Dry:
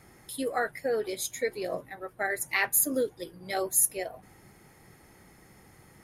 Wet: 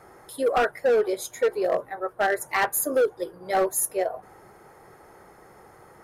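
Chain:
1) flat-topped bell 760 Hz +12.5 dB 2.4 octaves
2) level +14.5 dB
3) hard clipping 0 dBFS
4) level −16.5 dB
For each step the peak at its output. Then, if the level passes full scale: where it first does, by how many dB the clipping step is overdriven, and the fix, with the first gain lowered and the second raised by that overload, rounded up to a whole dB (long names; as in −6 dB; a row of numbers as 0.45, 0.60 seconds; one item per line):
−5.0, +9.5, 0.0, −16.5 dBFS
step 2, 9.5 dB
step 2 +4.5 dB, step 4 −6.5 dB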